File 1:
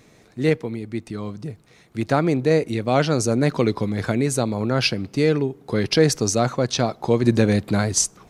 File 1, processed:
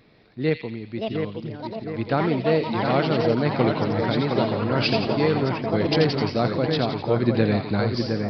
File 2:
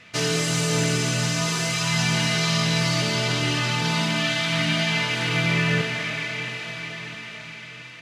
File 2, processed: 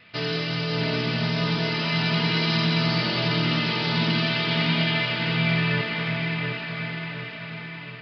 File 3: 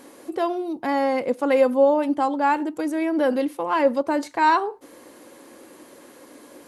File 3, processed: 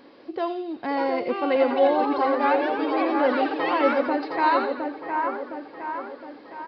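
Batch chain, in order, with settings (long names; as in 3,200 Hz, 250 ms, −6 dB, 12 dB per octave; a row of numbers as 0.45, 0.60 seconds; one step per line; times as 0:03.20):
delay with pitch and tempo change per echo 703 ms, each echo +6 semitones, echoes 3, each echo −6 dB
echo with a time of its own for lows and highs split 2,200 Hz, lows 713 ms, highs 85 ms, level −5 dB
downsampling to 11,025 Hz
level −3.5 dB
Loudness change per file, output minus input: −2.0, −1.5, −2.0 LU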